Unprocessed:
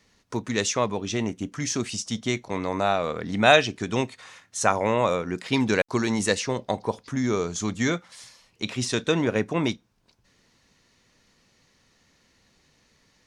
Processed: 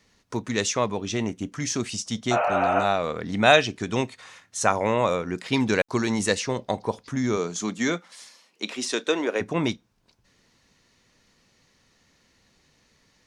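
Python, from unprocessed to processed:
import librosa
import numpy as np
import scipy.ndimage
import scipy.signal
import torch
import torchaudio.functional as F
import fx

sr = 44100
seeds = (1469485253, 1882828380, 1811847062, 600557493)

y = fx.spec_repair(x, sr, seeds[0], start_s=2.34, length_s=0.47, low_hz=430.0, high_hz=3200.0, source='after')
y = fx.highpass(y, sr, hz=fx.line((7.36, 140.0), (9.4, 320.0)), slope=24, at=(7.36, 9.4), fade=0.02)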